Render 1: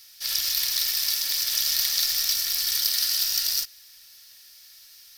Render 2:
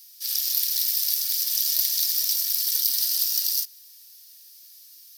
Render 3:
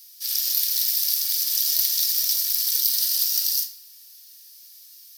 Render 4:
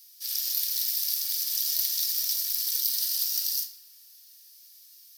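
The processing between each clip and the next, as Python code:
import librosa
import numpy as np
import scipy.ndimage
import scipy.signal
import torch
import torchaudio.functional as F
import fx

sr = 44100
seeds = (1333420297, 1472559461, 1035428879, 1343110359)

y1 = np.diff(x, prepend=0.0)
y2 = fx.room_shoebox(y1, sr, seeds[0], volume_m3=290.0, walls='mixed', distance_m=0.5)
y2 = y2 * 10.0 ** (1.0 / 20.0)
y3 = fx.echo_tape(y2, sr, ms=159, feedback_pct=72, wet_db=-18.0, lp_hz=2000.0, drive_db=5.0, wow_cents=27)
y3 = y3 * 10.0 ** (-5.5 / 20.0)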